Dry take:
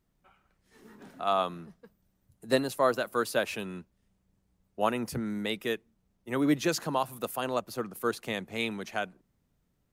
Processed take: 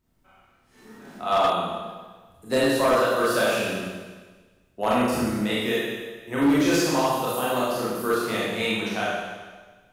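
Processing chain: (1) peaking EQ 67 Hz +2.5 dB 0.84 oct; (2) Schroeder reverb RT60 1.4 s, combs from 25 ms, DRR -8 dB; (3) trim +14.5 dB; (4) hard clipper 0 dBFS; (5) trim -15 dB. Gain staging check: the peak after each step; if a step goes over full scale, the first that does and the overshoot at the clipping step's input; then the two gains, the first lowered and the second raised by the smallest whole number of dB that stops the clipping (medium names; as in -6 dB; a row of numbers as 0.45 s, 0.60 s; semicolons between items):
-10.0 dBFS, -6.0 dBFS, +8.5 dBFS, 0.0 dBFS, -15.0 dBFS; step 3, 8.5 dB; step 3 +5.5 dB, step 5 -6 dB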